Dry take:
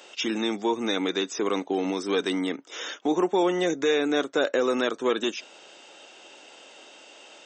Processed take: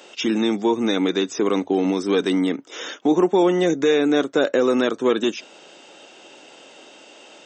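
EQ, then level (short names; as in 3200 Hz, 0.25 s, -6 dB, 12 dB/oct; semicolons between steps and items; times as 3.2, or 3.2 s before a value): low shelf 330 Hz +10 dB; notches 50/100 Hz; +2.0 dB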